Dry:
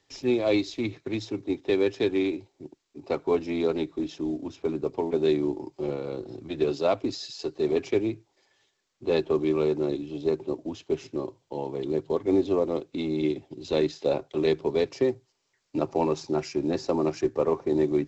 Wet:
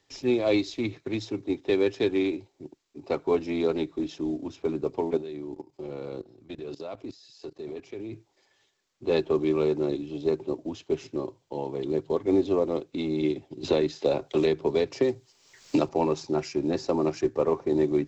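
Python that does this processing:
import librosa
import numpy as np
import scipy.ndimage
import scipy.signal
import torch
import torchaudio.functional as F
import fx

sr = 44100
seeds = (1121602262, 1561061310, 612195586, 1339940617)

y = fx.level_steps(x, sr, step_db=18, at=(5.17, 8.13))
y = fx.band_squash(y, sr, depth_pct=100, at=(13.63, 15.89))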